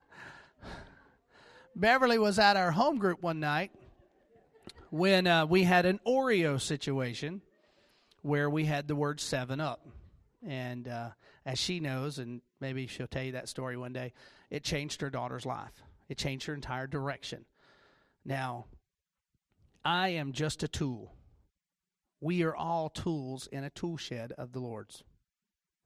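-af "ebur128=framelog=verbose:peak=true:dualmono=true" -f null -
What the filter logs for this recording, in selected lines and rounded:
Integrated loudness:
  I:         -29.0 LUFS
  Threshold: -40.3 LUFS
Loudness range:
  LRA:        10.1 LU
  Threshold: -50.4 LUFS
  LRA low:   -35.9 LUFS
  LRA high:  -25.9 LUFS
True peak:
  Peak:      -10.4 dBFS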